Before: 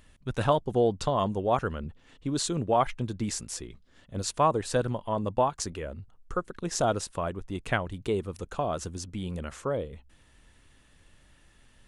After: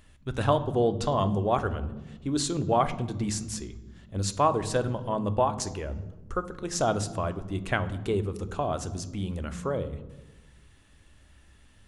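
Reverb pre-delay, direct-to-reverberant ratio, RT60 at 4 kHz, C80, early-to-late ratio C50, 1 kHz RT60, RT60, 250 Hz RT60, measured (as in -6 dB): 3 ms, 10.5 dB, 0.80 s, 17.0 dB, 15.0 dB, 1.0 s, 1.1 s, 1.4 s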